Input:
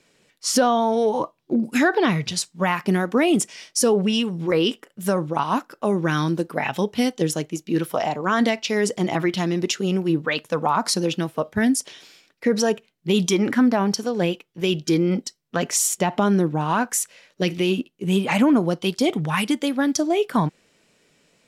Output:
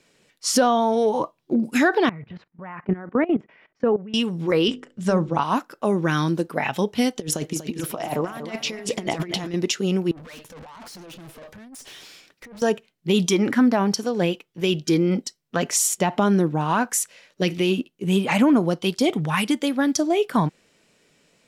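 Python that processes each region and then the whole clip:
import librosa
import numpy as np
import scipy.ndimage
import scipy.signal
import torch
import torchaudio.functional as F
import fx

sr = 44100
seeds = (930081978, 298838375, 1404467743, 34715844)

y = fx.chain(x, sr, fx.lowpass(hz=2000.0, slope=24),
    fx.level_steps(step_db=18), at=(2.09, 4.14))
y = fx.chain(y, sr, fx.lowpass(hz=8000.0, slope=24),
    fx.low_shelf(hz=150.0, db=11.0),
    fx.hum_notches(base_hz=50, count=10), at=(4.68, 5.41))
y = fx.chain(y, sr, fx.over_compress(threshold_db=-27.0, ratio=-0.5),
    fx.echo_feedback(ms=240, feedback_pct=36, wet_db=-11), at=(7.16, 9.54))
y = fx.chain(y, sr, fx.over_compress(threshold_db=-27.0, ratio=-0.5),
    fx.tube_stage(drive_db=40.0, bias=0.4), at=(10.11, 12.62))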